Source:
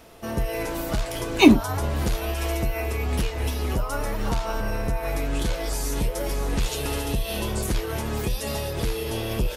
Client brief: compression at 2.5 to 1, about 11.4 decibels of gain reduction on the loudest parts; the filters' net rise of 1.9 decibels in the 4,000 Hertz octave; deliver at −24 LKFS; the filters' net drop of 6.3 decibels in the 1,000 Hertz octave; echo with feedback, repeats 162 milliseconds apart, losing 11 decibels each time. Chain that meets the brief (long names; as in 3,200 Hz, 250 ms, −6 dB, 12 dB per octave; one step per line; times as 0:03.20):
parametric band 1,000 Hz −9 dB
parametric band 4,000 Hz +3 dB
downward compressor 2.5 to 1, threshold −25 dBFS
repeating echo 162 ms, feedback 28%, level −11 dB
level +5.5 dB